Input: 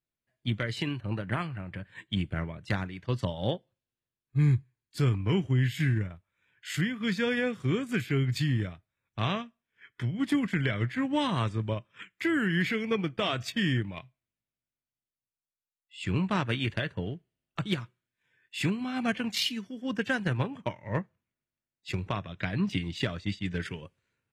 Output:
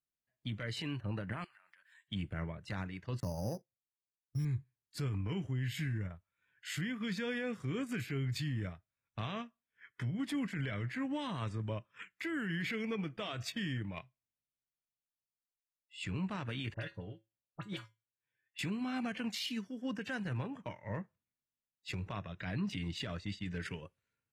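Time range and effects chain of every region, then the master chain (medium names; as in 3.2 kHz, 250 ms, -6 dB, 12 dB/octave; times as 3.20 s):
1.44–2.08 s: high-pass 1.4 kHz + treble shelf 4.5 kHz +8.5 dB + compression 16:1, threshold -55 dBFS
3.20–4.45 s: bass shelf 250 Hz +5 dB + gate -50 dBFS, range -14 dB + careless resampling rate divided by 8×, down filtered, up hold
16.74–18.59 s: feedback comb 110 Hz, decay 0.25 s, harmonics odd, mix 70% + phase dispersion highs, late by 44 ms, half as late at 2.1 kHz
whole clip: spectral noise reduction 6 dB; peak limiter -26 dBFS; band-stop 360 Hz, Q 12; trim -3 dB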